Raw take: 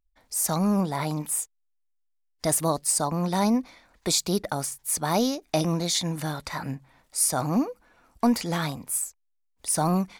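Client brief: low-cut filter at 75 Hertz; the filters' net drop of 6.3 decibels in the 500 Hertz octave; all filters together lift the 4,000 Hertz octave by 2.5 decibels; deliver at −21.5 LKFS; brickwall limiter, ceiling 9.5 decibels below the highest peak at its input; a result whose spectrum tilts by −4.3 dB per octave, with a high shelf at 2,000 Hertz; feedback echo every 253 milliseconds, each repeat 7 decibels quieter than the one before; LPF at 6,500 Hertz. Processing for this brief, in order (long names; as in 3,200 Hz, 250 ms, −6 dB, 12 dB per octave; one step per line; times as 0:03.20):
high-pass filter 75 Hz
low-pass filter 6,500 Hz
parametric band 500 Hz −8.5 dB
high-shelf EQ 2,000 Hz −3.5 dB
parametric band 4,000 Hz +7 dB
brickwall limiter −20 dBFS
repeating echo 253 ms, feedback 45%, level −7 dB
level +9 dB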